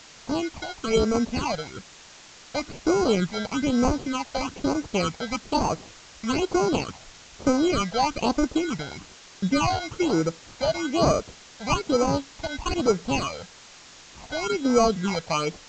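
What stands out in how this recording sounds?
aliases and images of a low sample rate 1,800 Hz, jitter 0%
phaser sweep stages 8, 1.1 Hz, lowest notch 330–3,300 Hz
a quantiser's noise floor 8 bits, dither triangular
A-law companding

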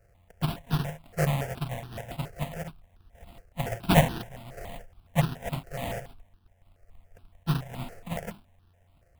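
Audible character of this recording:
a buzz of ramps at a fixed pitch in blocks of 64 samples
sample-and-hold tremolo
aliases and images of a low sample rate 1,200 Hz, jitter 20%
notches that jump at a steady rate 7.1 Hz 970–2,100 Hz

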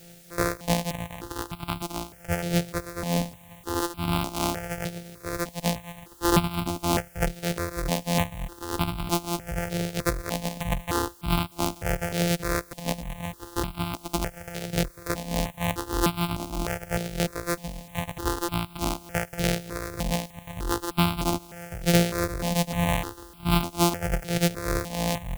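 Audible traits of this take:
a buzz of ramps at a fixed pitch in blocks of 256 samples
tremolo triangle 3.2 Hz, depth 75%
a quantiser's noise floor 10 bits, dither triangular
notches that jump at a steady rate 3.3 Hz 280–1,800 Hz

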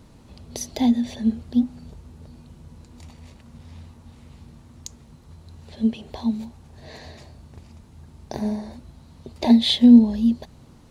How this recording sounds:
background noise floor −50 dBFS
spectral slope −5.5 dB per octave

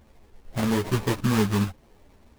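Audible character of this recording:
aliases and images of a low sample rate 1,400 Hz, jitter 20%
a shimmering, thickened sound

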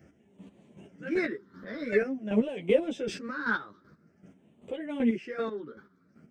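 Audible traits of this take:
phaser sweep stages 6, 0.48 Hz, lowest notch 700–1,400 Hz
chopped level 2.6 Hz, depth 65%, duty 25%
a shimmering, thickened sound

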